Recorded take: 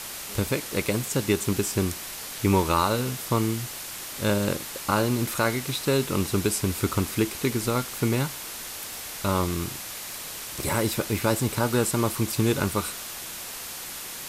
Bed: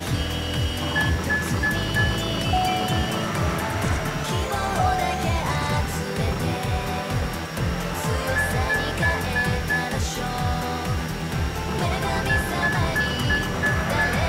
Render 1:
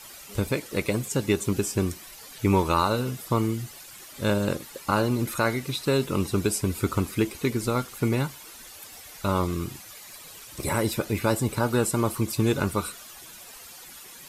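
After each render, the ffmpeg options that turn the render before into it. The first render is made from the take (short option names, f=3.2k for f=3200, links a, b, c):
-af "afftdn=nr=12:nf=-37"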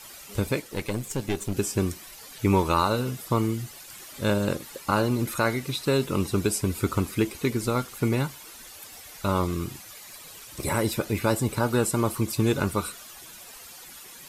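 -filter_complex "[0:a]asettb=1/sr,asplit=3[a][b][c];[a]atrim=end=0.614[d];[b]atrim=start=0.61:end=1.57,asetpts=PTS-STARTPTS,afade=t=in:d=0.004:c=qsin,afade=t=out:st=0.956:d=0.004:c=qsin,aeval=exprs='(tanh(11.2*val(0)+0.65)-tanh(0.65))/11.2':c=same[e];[c]atrim=start=1.566[f];[d][e]acrossfade=d=0.004:c1=hsin:c2=qsin[g];[g][f]acrossfade=d=0.004:c1=qsin:c2=hsin,asettb=1/sr,asplit=3[h][i][j];[h]atrim=end=3.904[k];[i]atrim=start=3.9:end=4.81,asetpts=PTS-STARTPTS,afade=t=in:d=0.004:c=qsin,afade=t=out:st=0.906:d=0.004:c=qsin,acompressor=mode=upward:threshold=-38dB:ratio=2.5:attack=3.2:release=140:knee=2.83:detection=peak[l];[j]atrim=start=4.806[m];[k][l]acrossfade=d=0.004:c1=hsin:c2=qsin[n];[n][m]acrossfade=d=0.004:c1=qsin:c2=hsin"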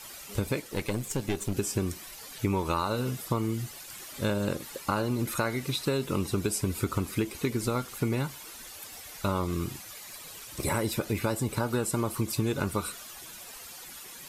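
-af "acompressor=threshold=-24dB:ratio=6"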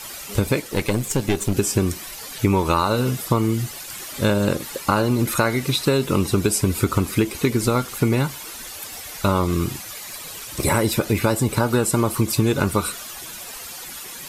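-af "volume=9.5dB"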